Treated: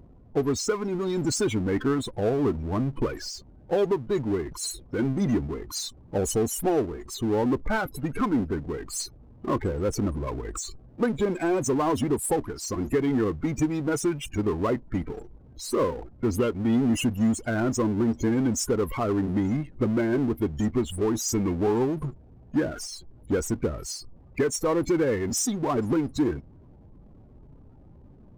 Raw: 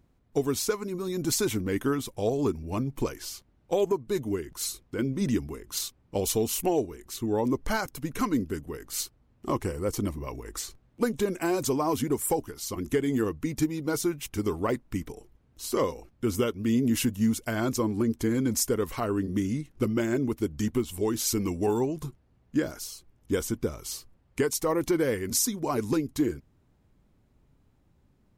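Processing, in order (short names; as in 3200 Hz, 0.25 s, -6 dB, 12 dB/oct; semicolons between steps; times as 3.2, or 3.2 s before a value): loudest bins only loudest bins 32; power-law curve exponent 0.7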